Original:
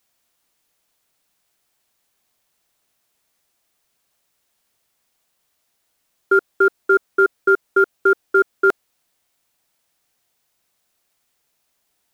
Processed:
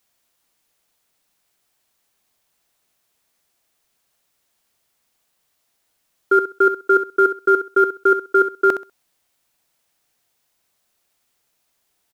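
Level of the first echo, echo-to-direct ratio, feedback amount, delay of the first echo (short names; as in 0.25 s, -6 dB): -10.5 dB, -10.5 dB, 19%, 65 ms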